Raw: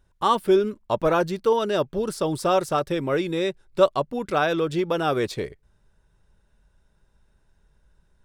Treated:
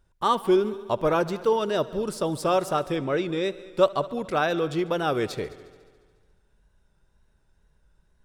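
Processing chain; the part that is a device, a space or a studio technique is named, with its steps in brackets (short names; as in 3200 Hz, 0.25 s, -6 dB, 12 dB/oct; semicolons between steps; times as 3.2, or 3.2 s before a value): multi-head tape echo (multi-head echo 71 ms, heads all three, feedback 53%, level -23 dB; wow and flutter); 2.96–3.44 LPF 6800 Hz 12 dB/oct; gain -2 dB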